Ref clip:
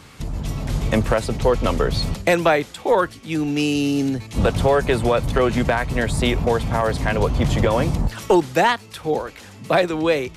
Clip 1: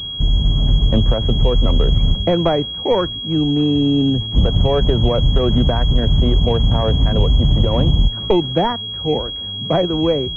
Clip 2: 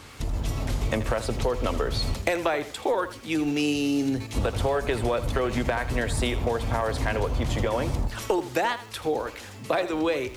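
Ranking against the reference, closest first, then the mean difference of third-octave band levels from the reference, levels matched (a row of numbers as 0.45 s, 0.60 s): 2, 1; 4.0 dB, 10.0 dB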